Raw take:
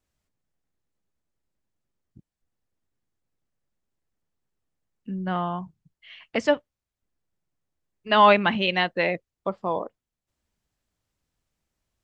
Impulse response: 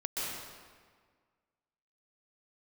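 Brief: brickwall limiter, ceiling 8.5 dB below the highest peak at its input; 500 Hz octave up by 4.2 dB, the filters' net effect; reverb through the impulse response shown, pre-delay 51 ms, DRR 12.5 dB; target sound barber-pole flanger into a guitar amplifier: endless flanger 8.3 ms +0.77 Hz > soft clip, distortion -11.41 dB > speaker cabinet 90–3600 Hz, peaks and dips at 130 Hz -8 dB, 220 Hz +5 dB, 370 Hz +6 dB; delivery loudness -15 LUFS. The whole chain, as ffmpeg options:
-filter_complex "[0:a]equalizer=f=500:t=o:g=4,alimiter=limit=-11.5dB:level=0:latency=1,asplit=2[a][b];[1:a]atrim=start_sample=2205,adelay=51[c];[b][c]afir=irnorm=-1:irlink=0,volume=-17.5dB[d];[a][d]amix=inputs=2:normalize=0,asplit=2[e][f];[f]adelay=8.3,afreqshift=0.77[g];[e][g]amix=inputs=2:normalize=1,asoftclip=threshold=-22dB,highpass=90,equalizer=f=130:t=q:w=4:g=-8,equalizer=f=220:t=q:w=4:g=5,equalizer=f=370:t=q:w=4:g=6,lowpass=f=3.6k:w=0.5412,lowpass=f=3.6k:w=1.3066,volume=15.5dB"

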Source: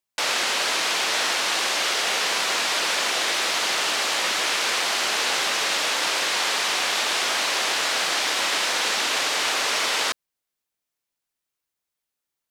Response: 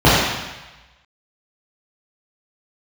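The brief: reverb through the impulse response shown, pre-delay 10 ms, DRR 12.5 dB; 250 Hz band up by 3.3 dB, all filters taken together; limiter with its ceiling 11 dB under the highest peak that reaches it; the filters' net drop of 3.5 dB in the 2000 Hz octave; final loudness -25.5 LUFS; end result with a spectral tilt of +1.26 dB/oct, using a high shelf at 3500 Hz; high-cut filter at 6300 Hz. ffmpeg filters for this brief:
-filter_complex "[0:a]lowpass=6.3k,equalizer=f=250:t=o:g=4.5,equalizer=f=2k:t=o:g=-7.5,highshelf=f=3.5k:g=9,alimiter=limit=-20dB:level=0:latency=1,asplit=2[a][b];[1:a]atrim=start_sample=2205,adelay=10[c];[b][c]afir=irnorm=-1:irlink=0,volume=-42dB[d];[a][d]amix=inputs=2:normalize=0,volume=1dB"

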